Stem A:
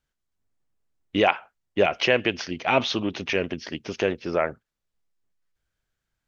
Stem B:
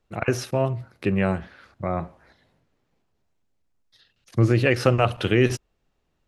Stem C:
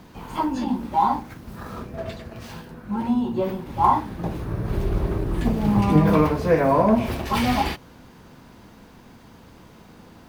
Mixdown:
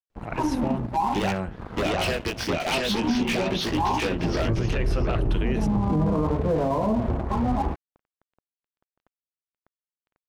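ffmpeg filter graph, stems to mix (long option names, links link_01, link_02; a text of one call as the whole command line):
ffmpeg -i stem1.wav -i stem2.wav -i stem3.wav -filter_complex "[0:a]acompressor=threshold=-24dB:ratio=12,flanger=delay=16:depth=6.1:speed=0.62,aeval=exprs='0.15*sin(PI/2*3.16*val(0)/0.15)':channel_layout=same,volume=-3dB,asplit=2[link_01][link_02];[link_02]volume=-3.5dB[link_03];[1:a]adelay=100,volume=-5.5dB[link_04];[2:a]lowpass=frequency=1100:width=0.5412,lowpass=frequency=1100:width=1.3066,lowshelf=frequency=62:gain=11,volume=2.5dB[link_05];[link_01][link_05]amix=inputs=2:normalize=0,aeval=exprs='sgn(val(0))*max(abs(val(0))-0.0211,0)':channel_layout=same,alimiter=limit=-11dB:level=0:latency=1:release=21,volume=0dB[link_06];[link_03]aecho=0:1:703:1[link_07];[link_04][link_06][link_07]amix=inputs=3:normalize=0,alimiter=limit=-15.5dB:level=0:latency=1:release=65" out.wav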